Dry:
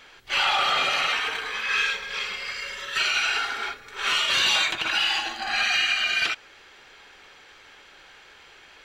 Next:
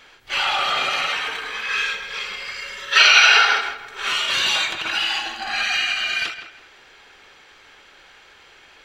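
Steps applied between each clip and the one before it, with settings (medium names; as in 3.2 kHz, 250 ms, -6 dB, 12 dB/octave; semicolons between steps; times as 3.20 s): time-frequency box 2.92–3.61 s, 390–6400 Hz +11 dB; filtered feedback delay 164 ms, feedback 28%, low-pass 3.1 kHz, level -10.5 dB; endings held to a fixed fall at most 110 dB/s; trim +1 dB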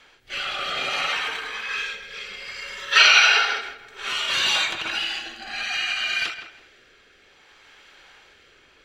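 rotary cabinet horn 0.6 Hz; trim -1 dB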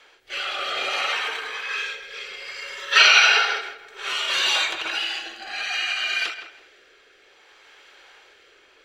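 resonant low shelf 280 Hz -10 dB, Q 1.5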